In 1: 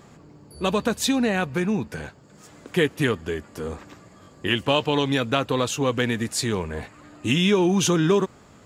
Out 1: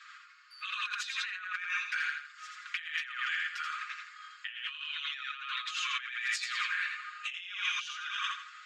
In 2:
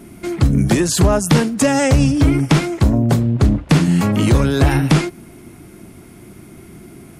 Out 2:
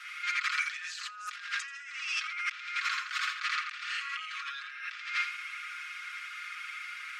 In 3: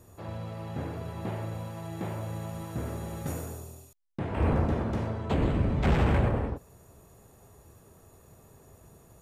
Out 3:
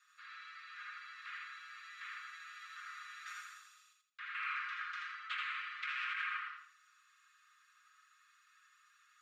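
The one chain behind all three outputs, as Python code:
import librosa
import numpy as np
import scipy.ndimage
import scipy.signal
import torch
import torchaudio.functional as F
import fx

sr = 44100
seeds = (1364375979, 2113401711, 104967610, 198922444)

p1 = scipy.signal.sosfilt(scipy.signal.butter(16, 1200.0, 'highpass', fs=sr, output='sos'), x)
p2 = fx.air_absorb(p1, sr, metres=180.0)
p3 = p2 + 0.82 * np.pad(p2, (int(5.6 * sr / 1000.0), 0))[:len(p2)]
p4 = p3 + fx.echo_feedback(p3, sr, ms=83, feedback_pct=33, wet_db=-4, dry=0)
p5 = fx.over_compress(p4, sr, threshold_db=-39.0, ratio=-1.0)
y = fx.dynamic_eq(p5, sr, hz=2400.0, q=3.4, threshold_db=-51.0, ratio=4.0, max_db=4)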